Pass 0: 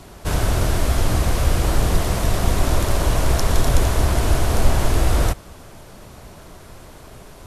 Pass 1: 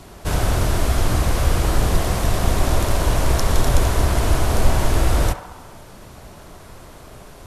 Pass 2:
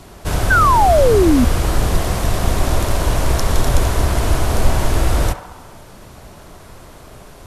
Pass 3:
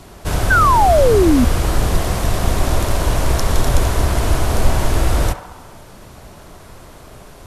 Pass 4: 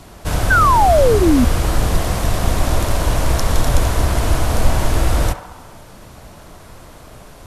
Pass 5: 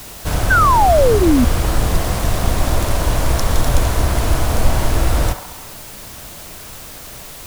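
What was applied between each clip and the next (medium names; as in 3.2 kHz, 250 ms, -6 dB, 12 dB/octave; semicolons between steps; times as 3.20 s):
band-passed feedback delay 67 ms, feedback 75%, band-pass 1 kHz, level -8 dB
painted sound fall, 0.50–1.45 s, 230–1600 Hz -14 dBFS; trim +1.5 dB
no audible change
band-stop 390 Hz, Q 12
word length cut 6-bit, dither triangular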